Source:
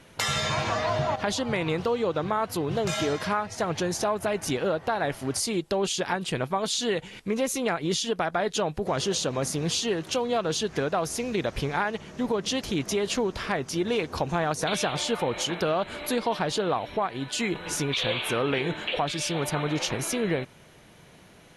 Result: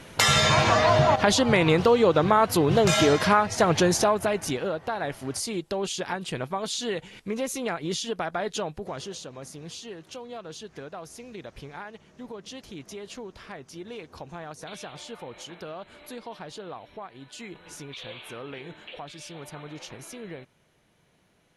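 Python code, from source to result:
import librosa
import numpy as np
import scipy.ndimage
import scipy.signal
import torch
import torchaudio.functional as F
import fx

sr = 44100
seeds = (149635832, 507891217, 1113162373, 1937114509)

y = fx.gain(x, sr, db=fx.line((3.87, 7.0), (4.69, -3.0), (8.56, -3.0), (9.29, -13.0)))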